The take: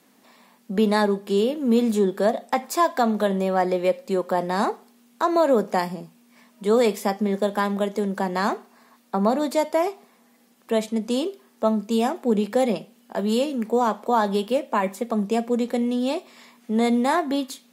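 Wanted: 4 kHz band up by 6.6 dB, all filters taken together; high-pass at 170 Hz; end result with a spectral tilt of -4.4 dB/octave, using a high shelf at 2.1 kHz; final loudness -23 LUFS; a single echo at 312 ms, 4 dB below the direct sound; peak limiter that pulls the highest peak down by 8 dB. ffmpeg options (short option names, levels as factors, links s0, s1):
-af "highpass=170,highshelf=f=2100:g=5,equalizer=f=4000:t=o:g=3.5,alimiter=limit=0.2:level=0:latency=1,aecho=1:1:312:0.631,volume=1.12"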